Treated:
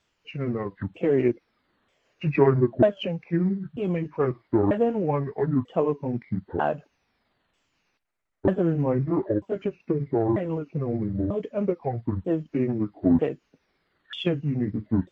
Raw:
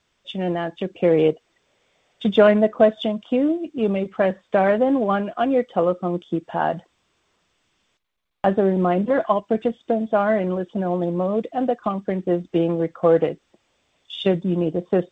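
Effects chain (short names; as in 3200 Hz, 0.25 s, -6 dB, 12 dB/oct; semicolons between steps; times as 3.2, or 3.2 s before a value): repeated pitch sweeps -12 st, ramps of 0.942 s; gain -3 dB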